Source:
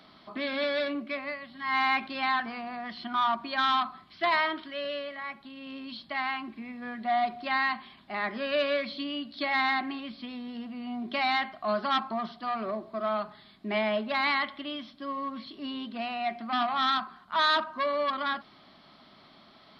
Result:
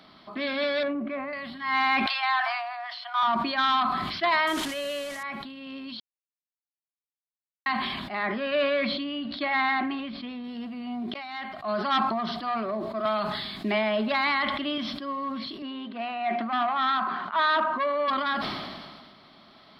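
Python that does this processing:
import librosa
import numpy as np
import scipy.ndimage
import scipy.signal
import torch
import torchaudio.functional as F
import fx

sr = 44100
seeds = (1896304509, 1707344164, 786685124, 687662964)

y = fx.lowpass(x, sr, hz=1500.0, slope=12, at=(0.83, 1.33))
y = fx.steep_highpass(y, sr, hz=640.0, slope=96, at=(2.06, 3.23))
y = fx.delta_mod(y, sr, bps=64000, step_db=-38.5, at=(4.47, 5.23))
y = fx.lowpass(y, sr, hz=3400.0, slope=12, at=(8.23, 10.44))
y = fx.band_squash(y, sr, depth_pct=70, at=(13.05, 14.78))
y = fx.bandpass_edges(y, sr, low_hz=240.0, high_hz=2800.0, at=(15.62, 18.08))
y = fx.edit(y, sr, fx.silence(start_s=6.0, length_s=1.66),
    fx.fade_in_span(start_s=11.14, length_s=0.79), tone=tone)
y = fx.sustainer(y, sr, db_per_s=32.0)
y = y * 10.0 ** (2.0 / 20.0)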